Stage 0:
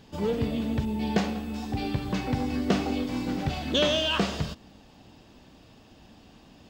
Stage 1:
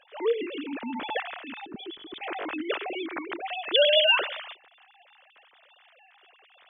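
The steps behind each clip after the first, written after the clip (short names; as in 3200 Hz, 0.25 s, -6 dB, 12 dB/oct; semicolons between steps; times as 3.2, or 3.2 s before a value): sine-wave speech; tilt shelf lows -7.5 dB, about 770 Hz; spectral gain 1.66–2.21, 450–3000 Hz -17 dB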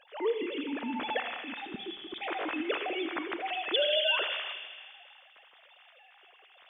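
compressor 4:1, threshold -25 dBFS, peak gain reduction 8 dB; thin delay 80 ms, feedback 74%, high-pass 2100 Hz, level -8 dB; Schroeder reverb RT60 1.4 s, combs from 31 ms, DRR 11.5 dB; gain -1 dB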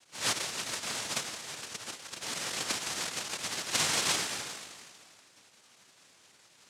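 noise vocoder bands 1; gain -2 dB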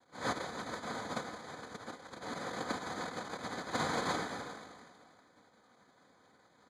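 running mean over 16 samples; comb 4 ms, depth 34%; gain +3 dB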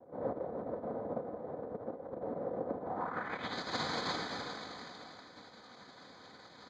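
compressor 2:1, threshold -55 dBFS, peak gain reduction 14 dB; low-pass sweep 560 Hz -> 4700 Hz, 2.83–3.59; gain +9.5 dB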